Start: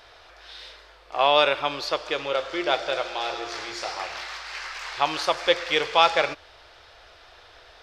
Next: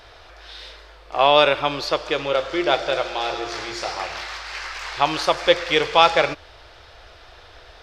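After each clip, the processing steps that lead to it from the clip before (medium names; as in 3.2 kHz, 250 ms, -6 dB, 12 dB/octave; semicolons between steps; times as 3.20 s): bass shelf 300 Hz +8 dB; trim +3 dB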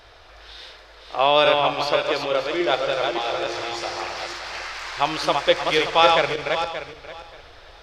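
backward echo that repeats 289 ms, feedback 42%, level -3.5 dB; trim -2.5 dB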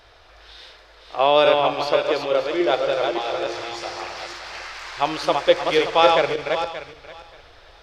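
dynamic bell 430 Hz, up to +6 dB, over -29 dBFS, Q 0.77; trim -2.5 dB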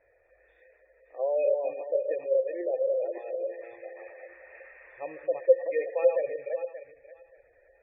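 Chebyshev shaper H 3 -15 dB, 4 -23 dB, 5 -23 dB, 6 -23 dB, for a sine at -1 dBFS; cascade formant filter e; spectral gate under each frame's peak -25 dB strong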